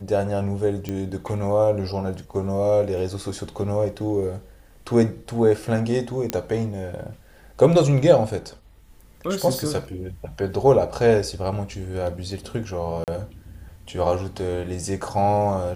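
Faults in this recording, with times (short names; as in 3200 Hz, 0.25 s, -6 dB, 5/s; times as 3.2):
0.89 pop -15 dBFS
6.3 pop -7 dBFS
13.04–13.08 gap 38 ms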